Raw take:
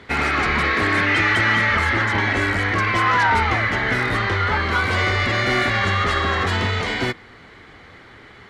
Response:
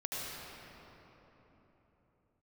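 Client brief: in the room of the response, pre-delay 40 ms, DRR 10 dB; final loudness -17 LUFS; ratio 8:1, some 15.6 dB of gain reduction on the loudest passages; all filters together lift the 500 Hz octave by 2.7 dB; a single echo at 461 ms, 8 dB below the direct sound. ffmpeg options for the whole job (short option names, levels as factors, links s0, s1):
-filter_complex "[0:a]equalizer=f=500:t=o:g=3.5,acompressor=threshold=0.0282:ratio=8,aecho=1:1:461:0.398,asplit=2[s0][s1];[1:a]atrim=start_sample=2205,adelay=40[s2];[s1][s2]afir=irnorm=-1:irlink=0,volume=0.211[s3];[s0][s3]amix=inputs=2:normalize=0,volume=5.62"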